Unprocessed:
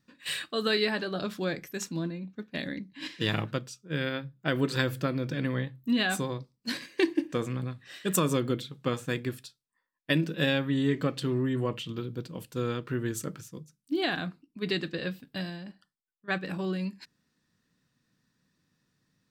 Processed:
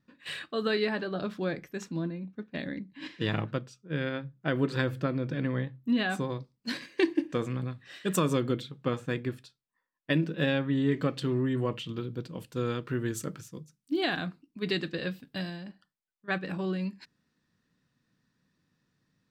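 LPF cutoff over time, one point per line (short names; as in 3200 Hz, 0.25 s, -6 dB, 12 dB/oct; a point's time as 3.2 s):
LPF 6 dB/oct
2000 Hz
from 6.3 s 4700 Hz
from 8.71 s 2300 Hz
from 10.92 s 5500 Hz
from 12.66 s 10000 Hz
from 15.68 s 4100 Hz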